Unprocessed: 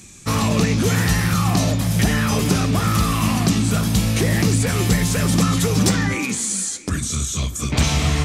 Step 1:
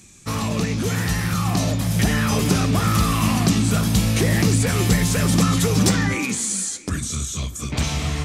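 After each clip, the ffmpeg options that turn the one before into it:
ffmpeg -i in.wav -af "dynaudnorm=framelen=380:gausssize=9:maxgain=6.5dB,volume=-5dB" out.wav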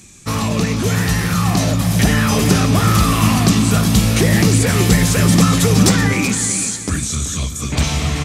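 ffmpeg -i in.wav -af "aecho=1:1:381|762|1143|1524:0.282|0.0958|0.0326|0.0111,volume=5dB" out.wav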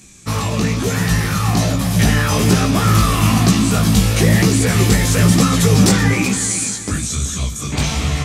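ffmpeg -i in.wav -af "flanger=delay=15:depth=5.5:speed=1.1,volume=2.5dB" out.wav

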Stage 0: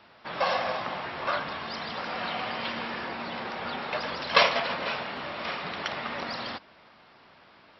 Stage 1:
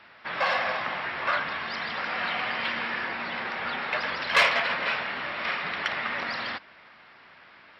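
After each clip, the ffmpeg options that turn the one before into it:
ffmpeg -i in.wav -af "asoftclip=type=tanh:threshold=-17dB,equalizer=frequency=1900:width_type=o:width=1.4:gain=10.5,volume=-2.5dB" out.wav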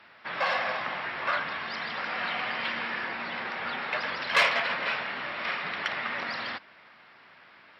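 ffmpeg -i in.wav -af "highpass=81,volume=-2dB" out.wav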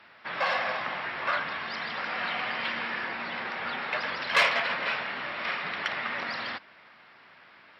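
ffmpeg -i in.wav -af anull out.wav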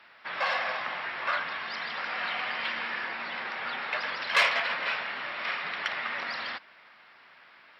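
ffmpeg -i in.wav -af "lowshelf=frequency=430:gain=-8.5" out.wav

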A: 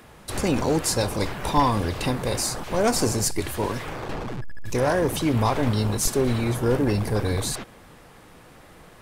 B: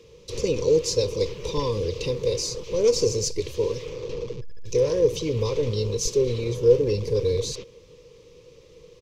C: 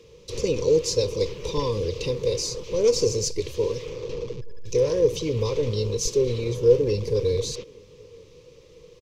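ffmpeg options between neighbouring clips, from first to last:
ffmpeg -i in.wav -af "firequalizer=gain_entry='entry(140,0);entry(250,-10);entry(480,14);entry(700,-25);entry(1000,-7);entry(1500,-20);entry(2400,-1);entry(3500,1);entry(6100,6);entry(8800,-14)':delay=0.05:min_phase=1,volume=-3.5dB" out.wav
ffmpeg -i in.wav -filter_complex "[0:a]asplit=2[link_01][link_02];[link_02]adelay=874.6,volume=-27dB,highshelf=frequency=4000:gain=-19.7[link_03];[link_01][link_03]amix=inputs=2:normalize=0" out.wav

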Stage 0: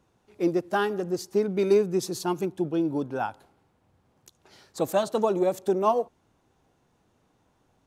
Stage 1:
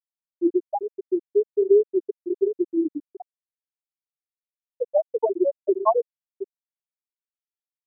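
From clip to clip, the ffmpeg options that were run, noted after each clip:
ffmpeg -i in.wav -filter_complex "[0:a]asplit=2[link_01][link_02];[link_02]adelay=718,lowpass=frequency=1800:poles=1,volume=-7dB,asplit=2[link_03][link_04];[link_04]adelay=718,lowpass=frequency=1800:poles=1,volume=0.31,asplit=2[link_05][link_06];[link_06]adelay=718,lowpass=frequency=1800:poles=1,volume=0.31,asplit=2[link_07][link_08];[link_08]adelay=718,lowpass=frequency=1800:poles=1,volume=0.31[link_09];[link_01][link_03][link_05][link_07][link_09]amix=inputs=5:normalize=0,afftfilt=real='re*gte(hypot(re,im),0.562)':imag='im*gte(hypot(re,im),0.562)':win_size=1024:overlap=0.75,volume=4.5dB" out.wav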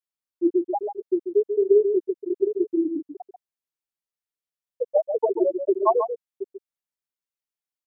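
ffmpeg -i in.wav -af "aecho=1:1:140:0.398" out.wav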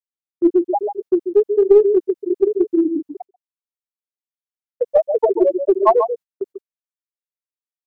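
ffmpeg -i in.wav -filter_complex "[0:a]asplit=2[link_01][link_02];[link_02]aeval=exprs='clip(val(0),-1,0.133)':channel_layout=same,volume=-11dB[link_03];[link_01][link_03]amix=inputs=2:normalize=0,agate=range=-21dB:threshold=-37dB:ratio=16:detection=peak,volume=4.5dB" out.wav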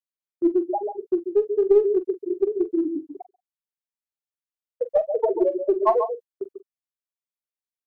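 ffmpeg -i in.wav -filter_complex "[0:a]asplit=2[link_01][link_02];[link_02]adelay=44,volume=-13.5dB[link_03];[link_01][link_03]amix=inputs=2:normalize=0,volume=-6dB" out.wav

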